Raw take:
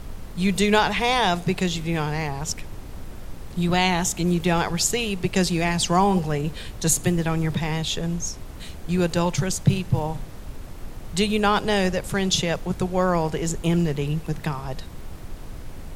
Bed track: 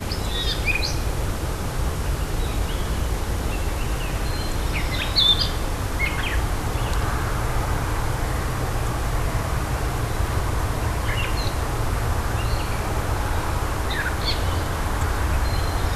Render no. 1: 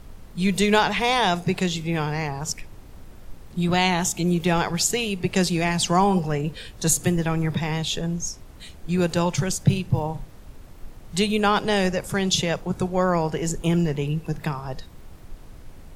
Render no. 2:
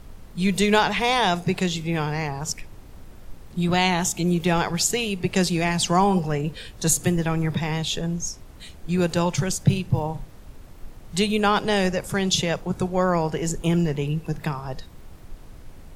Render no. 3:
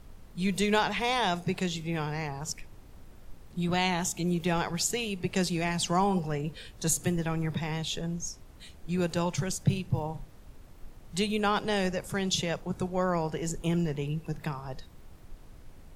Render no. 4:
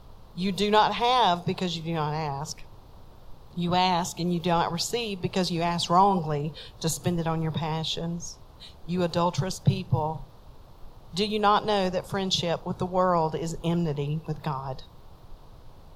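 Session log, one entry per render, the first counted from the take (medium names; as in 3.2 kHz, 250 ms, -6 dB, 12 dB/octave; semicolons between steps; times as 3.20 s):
noise print and reduce 7 dB
no audible change
trim -7 dB
ten-band graphic EQ 125 Hz +5 dB, 250 Hz -3 dB, 500 Hz +4 dB, 1 kHz +10 dB, 2 kHz -8 dB, 4 kHz +9 dB, 8 kHz -7 dB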